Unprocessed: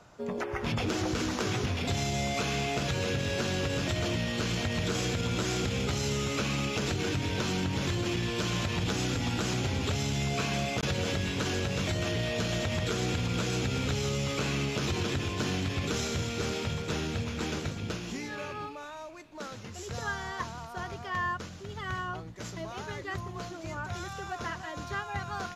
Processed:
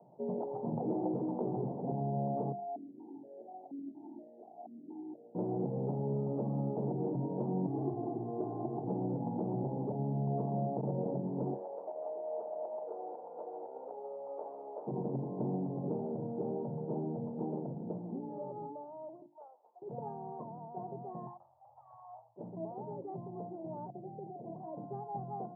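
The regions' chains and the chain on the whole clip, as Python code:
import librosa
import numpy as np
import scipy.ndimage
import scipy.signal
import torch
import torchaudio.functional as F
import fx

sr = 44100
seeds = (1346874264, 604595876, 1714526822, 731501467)

y = fx.chain(x, sr, fx.fixed_phaser(hz=770.0, stages=8),
    fx.vowel_held(hz=4.2), at=(2.52, 5.35))
y = fx.chain(y, sr, fx.peak_eq(hz=480.0, db=-5.0, octaves=0.29),
    fx.comb(ms=2.7, depth=0.99), at=(7.67, 8.87))
y = fx.chain(y, sr, fx.highpass(hz=520.0, slope=24),
    fx.peak_eq(hz=2500.0, db=9.0, octaves=0.76), at=(11.54, 14.87))
y = fx.chain(y, sr, fx.highpass(hz=730.0, slope=24),
    fx.upward_expand(threshold_db=-56.0, expansion=1.5), at=(19.26, 19.82))
y = fx.chain(y, sr, fx.lower_of_two(delay_ms=1.7),
    fx.cheby2_bandstop(low_hz=160.0, high_hz=420.0, order=4, stop_db=50), at=(21.27, 22.36))
y = fx.chain(y, sr, fx.cheby2_bandstop(low_hz=1300.0, high_hz=8100.0, order=4, stop_db=40),
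    fx.over_compress(threshold_db=-41.0, ratio=-0.5), at=(23.9, 24.56))
y = scipy.signal.sosfilt(scipy.signal.cheby1(5, 1.0, [130.0, 890.0], 'bandpass', fs=sr, output='sos'), y)
y = fx.hum_notches(y, sr, base_hz=50, count=7)
y = F.gain(torch.from_numpy(y), -1.0).numpy()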